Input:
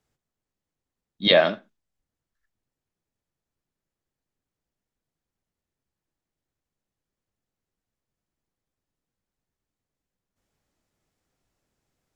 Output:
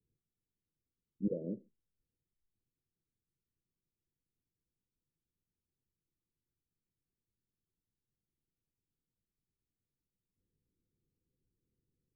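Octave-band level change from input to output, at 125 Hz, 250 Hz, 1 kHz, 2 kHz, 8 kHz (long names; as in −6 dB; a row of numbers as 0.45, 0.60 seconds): −7.5 dB, −7.5 dB, below −40 dB, below −40 dB, can't be measured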